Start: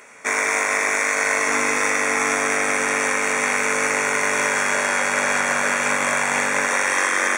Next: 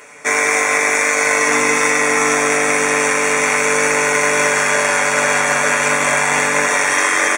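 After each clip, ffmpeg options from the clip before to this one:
-af "equalizer=f=1400:w=1.5:g=-2.5,aecho=1:1:6.8:0.65,volume=1.68"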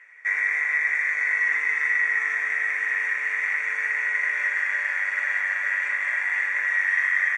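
-af "bandpass=f=1900:t=q:w=11:csg=0"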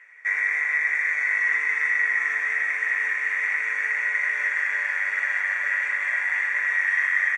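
-af "aecho=1:1:793:0.299"

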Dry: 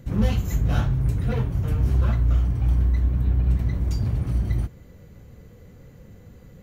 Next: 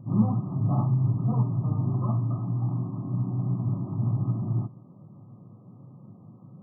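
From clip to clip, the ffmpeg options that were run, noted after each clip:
-af "equalizer=f=490:w=4.1:g=-15,bandreject=f=430:w=12,afftfilt=real='re*between(b*sr/4096,100,1300)':imag='im*between(b*sr/4096,100,1300)':win_size=4096:overlap=0.75,volume=1.26"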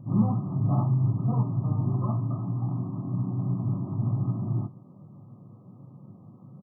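-filter_complex "[0:a]asplit=2[s0][s1];[s1]adelay=21,volume=0.251[s2];[s0][s2]amix=inputs=2:normalize=0"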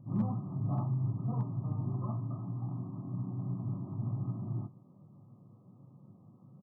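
-af "asoftclip=type=hard:threshold=0.178,volume=0.376"

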